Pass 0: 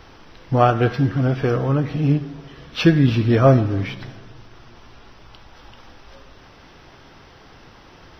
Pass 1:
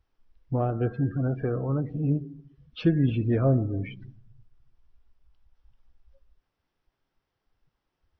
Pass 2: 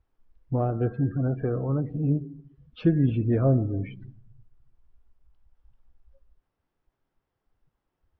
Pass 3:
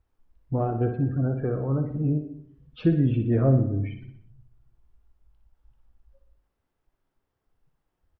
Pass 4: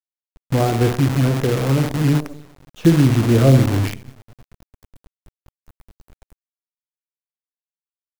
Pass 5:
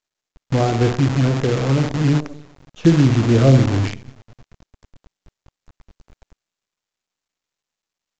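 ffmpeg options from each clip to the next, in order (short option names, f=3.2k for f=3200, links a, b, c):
-filter_complex "[0:a]afftdn=nr=28:nf=-28,acrossover=split=570[a][b];[b]acompressor=threshold=-31dB:ratio=5[c];[a][c]amix=inputs=2:normalize=0,volume=-7.5dB"
-af "highshelf=f=2.5k:g=-12,volume=1dB"
-af "aecho=1:1:60|120|180|240|300|360:0.376|0.195|0.102|0.0528|0.0275|0.0143"
-af "acrusher=bits=6:dc=4:mix=0:aa=0.000001,volume=8dB"
-ar 16000 -c:a pcm_mulaw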